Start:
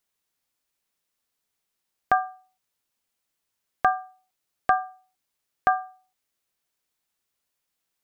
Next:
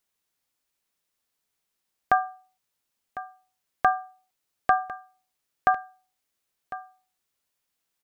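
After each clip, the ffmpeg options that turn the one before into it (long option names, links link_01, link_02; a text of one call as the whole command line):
ffmpeg -i in.wav -af "aecho=1:1:1052:0.168" out.wav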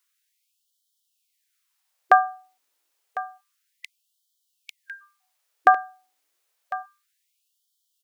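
ffmpeg -i in.wav -af "afftfilt=real='re*gte(b*sr/1024,240*pow(3000/240,0.5+0.5*sin(2*PI*0.29*pts/sr)))':imag='im*gte(b*sr/1024,240*pow(3000/240,0.5+0.5*sin(2*PI*0.29*pts/sr)))':win_size=1024:overlap=0.75,volume=6dB" out.wav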